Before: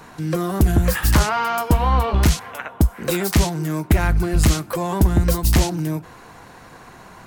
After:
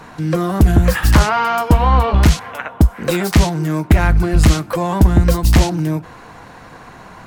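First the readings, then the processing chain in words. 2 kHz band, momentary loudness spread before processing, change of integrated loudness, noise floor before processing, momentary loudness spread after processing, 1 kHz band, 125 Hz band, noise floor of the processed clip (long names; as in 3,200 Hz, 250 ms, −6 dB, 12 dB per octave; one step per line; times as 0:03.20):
+4.5 dB, 8 LU, +4.5 dB, −44 dBFS, 8 LU, +5.0 dB, +5.0 dB, −39 dBFS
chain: high-shelf EQ 6,800 Hz −9.5 dB
notch filter 380 Hz, Q 12
level +5 dB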